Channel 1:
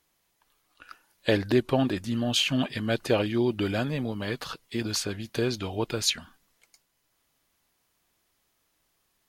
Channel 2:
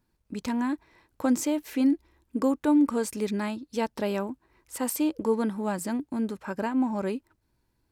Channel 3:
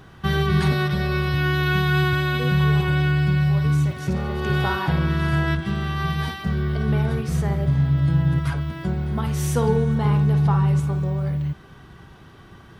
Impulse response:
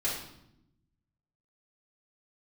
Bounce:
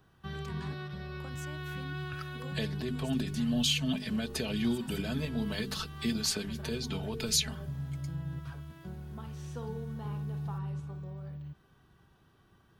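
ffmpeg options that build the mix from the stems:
-filter_complex "[0:a]bandreject=frequency=50:width_type=h:width=6,bandreject=frequency=100:width_type=h:width=6,bandreject=frequency=150:width_type=h:width=6,bandreject=frequency=200:width_type=h:width=6,bandreject=frequency=250:width_type=h:width=6,bandreject=frequency=300:width_type=h:width=6,bandreject=frequency=350:width_type=h:width=6,bandreject=frequency=400:width_type=h:width=6,bandreject=frequency=450:width_type=h:width=6,aecho=1:1:4.6:0.69,alimiter=limit=-17.5dB:level=0:latency=1:release=92,adelay=1300,volume=1.5dB[link_01];[1:a]highpass=frequency=840:poles=1,acompressor=threshold=-33dB:ratio=6,volume=-13dB,asplit=3[link_02][link_03][link_04];[link_02]atrim=end=5.38,asetpts=PTS-STARTPTS,afade=type=out:start_time=5.376:duration=0.004:curve=hsin[link_05];[link_03]atrim=start=5.38:end=6.15,asetpts=PTS-STARTPTS,volume=0[link_06];[link_04]atrim=start=6.15,asetpts=PTS-STARTPTS,afade=type=in:duration=0.004:curve=hsin[link_07];[link_05][link_06][link_07]concat=n=3:v=0:a=1,asplit=2[link_08][link_09];[2:a]highshelf=frequency=11000:gain=11.5,acrossover=split=6300[link_10][link_11];[link_11]acompressor=threshold=-59dB:ratio=4:attack=1:release=60[link_12];[link_10][link_12]amix=inputs=2:normalize=0,bandreject=frequency=2100:width=7.7,volume=-18.5dB[link_13];[link_09]apad=whole_len=466979[link_14];[link_01][link_14]sidechaincompress=threshold=-54dB:ratio=8:attack=50:release=119[link_15];[link_15][link_08][link_13]amix=inputs=3:normalize=0,acrossover=split=240|3000[link_16][link_17][link_18];[link_17]acompressor=threshold=-39dB:ratio=6[link_19];[link_16][link_19][link_18]amix=inputs=3:normalize=0"

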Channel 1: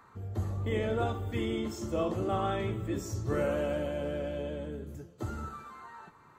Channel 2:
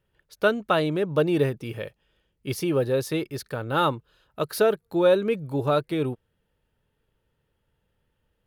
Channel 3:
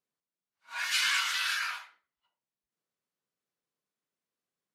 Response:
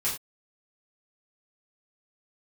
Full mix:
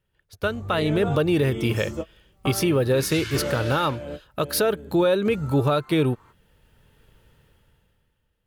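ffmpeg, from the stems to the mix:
-filter_complex "[0:a]adelay=50,volume=-2dB[link_01];[1:a]equalizer=frequency=480:width_type=o:width=2.7:gain=-4,dynaudnorm=framelen=160:gausssize=13:maxgain=8.5dB,volume=-0.5dB,asplit=2[link_02][link_03];[2:a]adelay=2200,volume=-8dB[link_04];[link_03]apad=whole_len=283704[link_05];[link_01][link_05]sidechaingate=range=-44dB:threshold=-47dB:ratio=16:detection=peak[link_06];[link_06][link_02]amix=inputs=2:normalize=0,dynaudnorm=framelen=150:gausssize=11:maxgain=11dB,alimiter=limit=-12.5dB:level=0:latency=1:release=287,volume=0dB[link_07];[link_04][link_07]amix=inputs=2:normalize=0"

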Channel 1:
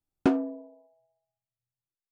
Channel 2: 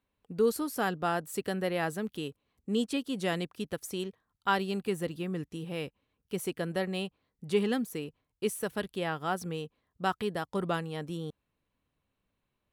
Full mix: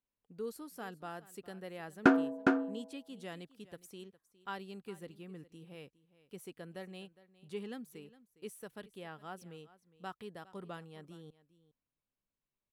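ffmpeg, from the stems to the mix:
ffmpeg -i stem1.wav -i stem2.wav -filter_complex "[0:a]equalizer=frequency=1500:width=2.2:gain=13.5,adelay=1800,volume=-1.5dB,asplit=2[link_01][link_02];[link_02]volume=-4dB[link_03];[1:a]lowshelf=frequency=77:gain=6.5,volume=-14.5dB,asplit=2[link_04][link_05];[link_05]volume=-18.5dB[link_06];[link_03][link_06]amix=inputs=2:normalize=0,aecho=0:1:410:1[link_07];[link_01][link_04][link_07]amix=inputs=3:normalize=0,equalizer=frequency=66:width_type=o:width=0.81:gain=-13" out.wav

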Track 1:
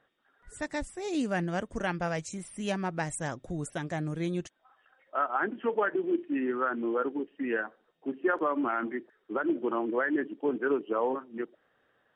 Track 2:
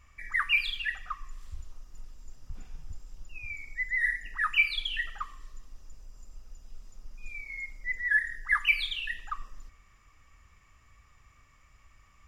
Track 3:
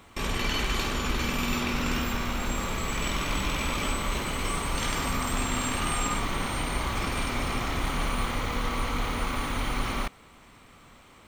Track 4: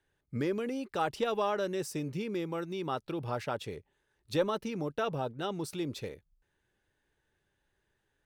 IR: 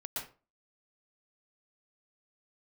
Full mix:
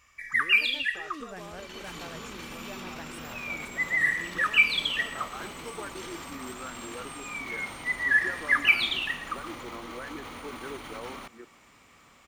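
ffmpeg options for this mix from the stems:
-filter_complex "[0:a]volume=-12.5dB[link_01];[1:a]tiltshelf=frequency=1300:gain=-4,volume=0.5dB,asplit=2[link_02][link_03];[link_03]volume=-10.5dB[link_04];[2:a]alimiter=level_in=2.5dB:limit=-24dB:level=0:latency=1:release=36,volume=-2.5dB,dynaudnorm=framelen=350:gausssize=3:maxgain=8dB,adelay=1200,volume=-12.5dB[link_05];[3:a]acompressor=threshold=-39dB:ratio=1.5,volume=-10.5dB[link_06];[4:a]atrim=start_sample=2205[link_07];[link_04][link_07]afir=irnorm=-1:irlink=0[link_08];[link_01][link_02][link_05][link_06][link_08]amix=inputs=5:normalize=0,highpass=frequency=180:poles=1"

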